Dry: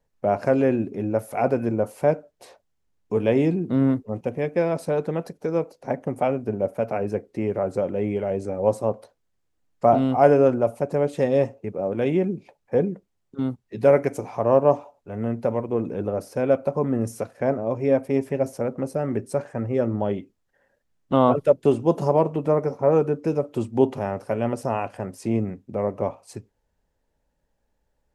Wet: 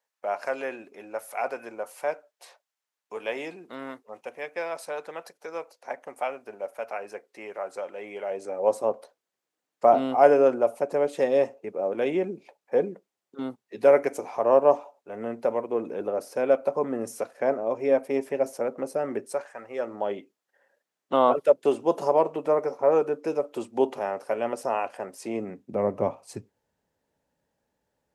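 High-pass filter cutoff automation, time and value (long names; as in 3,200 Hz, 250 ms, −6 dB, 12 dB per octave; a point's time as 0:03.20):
0:07.98 920 Hz
0:08.84 380 Hz
0:19.20 380 Hz
0:19.52 1,000 Hz
0:20.17 430 Hz
0:25.34 430 Hz
0:25.91 120 Hz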